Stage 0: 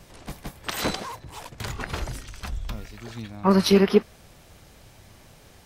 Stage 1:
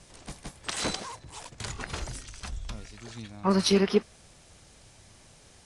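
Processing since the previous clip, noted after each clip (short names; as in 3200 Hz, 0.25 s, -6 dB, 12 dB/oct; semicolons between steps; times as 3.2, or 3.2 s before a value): Chebyshev low-pass 10000 Hz, order 5; high shelf 3900 Hz +9.5 dB; gain -5.5 dB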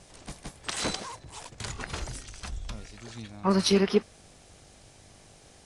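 buzz 50 Hz, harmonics 16, -62 dBFS 0 dB/oct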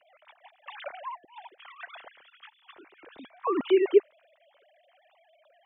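sine-wave speech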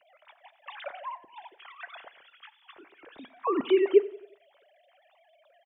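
feedback echo 90 ms, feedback 47%, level -19 dB; on a send at -17.5 dB: reverb RT60 0.45 s, pre-delay 7 ms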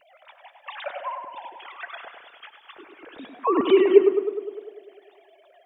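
tape echo 0.101 s, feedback 73%, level -4.5 dB, low-pass 1700 Hz; wow and flutter 24 cents; gain +5.5 dB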